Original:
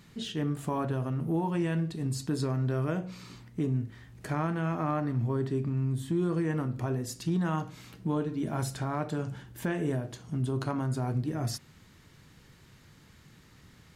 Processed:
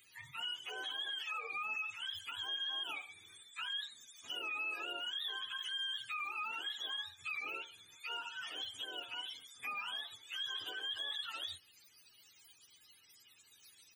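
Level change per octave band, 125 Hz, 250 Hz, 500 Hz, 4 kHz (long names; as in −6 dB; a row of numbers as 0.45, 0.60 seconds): below −40 dB, −34.0 dB, −22.5 dB, +10.0 dB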